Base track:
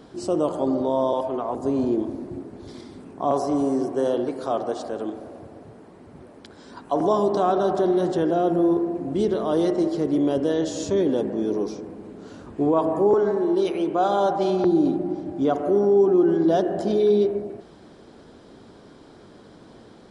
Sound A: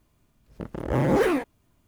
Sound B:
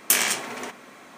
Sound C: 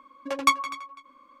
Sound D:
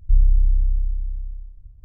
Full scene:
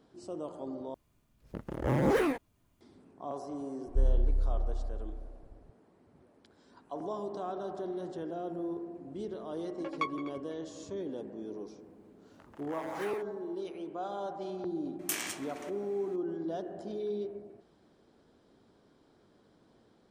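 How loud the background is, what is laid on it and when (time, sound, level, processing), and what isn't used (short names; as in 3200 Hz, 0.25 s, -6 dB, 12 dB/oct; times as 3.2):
base track -17 dB
0.94 replace with A -5.5 dB
3.86 add D -11 dB
9.54 add C -12.5 dB + LPF 2900 Hz
11.79 add A -12.5 dB + steep high-pass 670 Hz
14.99 add B -14.5 dB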